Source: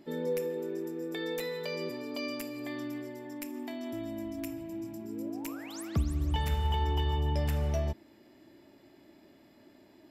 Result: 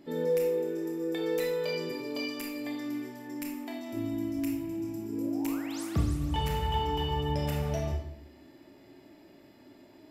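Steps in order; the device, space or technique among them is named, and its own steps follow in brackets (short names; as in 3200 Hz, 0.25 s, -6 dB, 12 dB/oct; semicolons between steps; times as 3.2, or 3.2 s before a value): bathroom (reverb RT60 0.60 s, pre-delay 24 ms, DRR 0 dB)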